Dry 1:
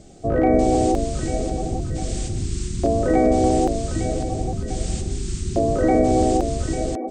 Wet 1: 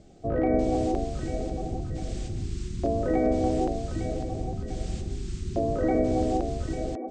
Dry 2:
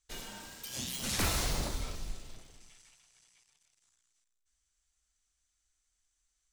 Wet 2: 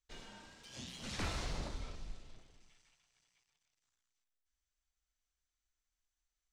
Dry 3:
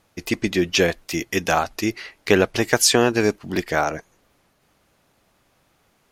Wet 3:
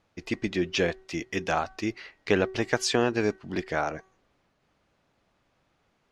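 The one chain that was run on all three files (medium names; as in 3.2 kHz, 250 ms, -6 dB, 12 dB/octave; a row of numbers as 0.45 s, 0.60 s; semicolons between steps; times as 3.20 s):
distance through air 93 m; de-hum 379.1 Hz, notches 5; trim -6.5 dB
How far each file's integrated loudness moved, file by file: -7.0 LU, -9.5 LU, -7.5 LU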